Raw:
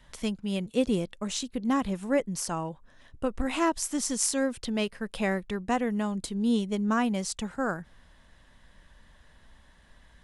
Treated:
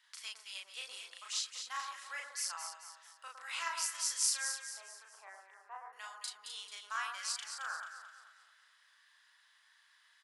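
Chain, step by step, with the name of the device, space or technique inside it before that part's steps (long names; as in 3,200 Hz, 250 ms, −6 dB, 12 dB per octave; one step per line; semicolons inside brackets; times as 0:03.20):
0:04.54–0:05.93: Chebyshev band-pass filter 310–950 Hz, order 2
headphones lying on a table (high-pass filter 1,200 Hz 24 dB per octave; parametric band 4,800 Hz +6.5 dB 0.36 octaves)
double-tracking delay 36 ms −2 dB
delay that swaps between a low-pass and a high-pass 110 ms, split 1,500 Hz, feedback 65%, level −4 dB
level −7 dB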